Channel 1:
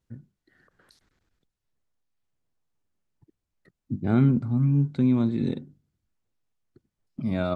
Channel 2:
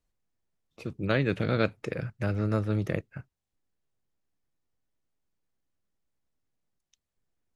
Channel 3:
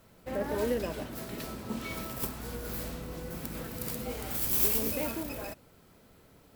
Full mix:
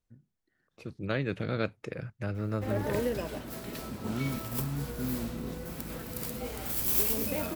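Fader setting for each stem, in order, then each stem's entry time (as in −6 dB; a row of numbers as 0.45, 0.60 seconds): −13.5, −5.0, −0.5 decibels; 0.00, 0.00, 2.35 seconds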